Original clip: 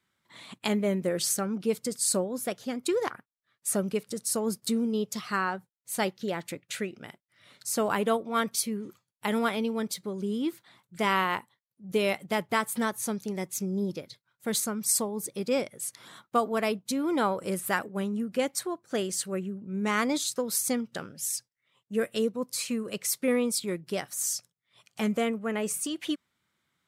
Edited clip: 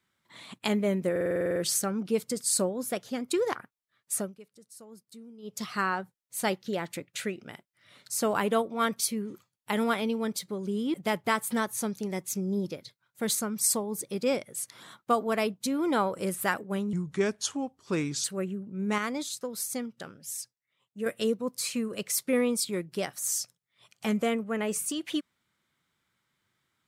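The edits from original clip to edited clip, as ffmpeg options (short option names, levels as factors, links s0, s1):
-filter_complex "[0:a]asplit=17[s0][s1][s2][s3][s4][s5][s6][s7][s8][s9][s10][s11][s12][s13][s14][s15][s16];[s0]atrim=end=1.162[s17];[s1]atrim=start=1.108:end=1.162[s18];[s2]atrim=start=1.108:end=1.162[s19];[s3]atrim=start=1.108:end=1.162[s20];[s4]atrim=start=1.108:end=1.162[s21];[s5]atrim=start=1.108:end=1.162[s22];[s6]atrim=start=1.108:end=1.162[s23];[s7]atrim=start=1.108:end=1.162[s24];[s8]atrim=start=1.108:end=1.162[s25];[s9]atrim=start=1.108:end=3.88,asetpts=PTS-STARTPTS,afade=t=out:st=2.562:d=0.21:silence=0.0944061[s26];[s10]atrim=start=3.88:end=4.97,asetpts=PTS-STARTPTS,volume=0.0944[s27];[s11]atrim=start=4.97:end=10.492,asetpts=PTS-STARTPTS,afade=t=in:d=0.21:silence=0.0944061[s28];[s12]atrim=start=12.188:end=18.184[s29];[s13]atrim=start=18.18:end=19.19,asetpts=PTS-STARTPTS,asetrate=33957,aresample=44100,atrim=end_sample=57845,asetpts=PTS-STARTPTS[s30];[s14]atrim=start=19.186:end=19.932[s31];[s15]atrim=start=19.928:end=22.012,asetpts=PTS-STARTPTS,volume=0.531[s32];[s16]atrim=start=22.008[s33];[s17][s18]acrossfade=d=0.004:c1=hsin:c2=hsin[s34];[s34][s19]acrossfade=d=0.004:c1=hsin:c2=hsin[s35];[s35][s20]acrossfade=d=0.004:c1=hsin:c2=hsin[s36];[s36][s21]acrossfade=d=0.004:c1=hsin:c2=hsin[s37];[s37][s22]acrossfade=d=0.004:c1=hsin:c2=hsin[s38];[s38][s23]acrossfade=d=0.004:c1=hsin:c2=hsin[s39];[s39][s24]acrossfade=d=0.004:c1=hsin:c2=hsin[s40];[s40][s25]acrossfade=d=0.004:c1=hsin:c2=hsin[s41];[s26][s27][s28]concat=n=3:v=0:a=1[s42];[s41][s42]acrossfade=d=0.004:c1=hsin:c2=hsin[s43];[s43][s29]acrossfade=d=0.004:c1=hsin:c2=hsin[s44];[s44][s30]acrossfade=d=0.004:c1=hsin:c2=hsin[s45];[s45][s31]acrossfade=d=0.004:c1=hsin:c2=hsin[s46];[s46][s32]acrossfade=d=0.004:c1=hsin:c2=hsin[s47];[s47][s33]acrossfade=d=0.004:c1=hsin:c2=hsin"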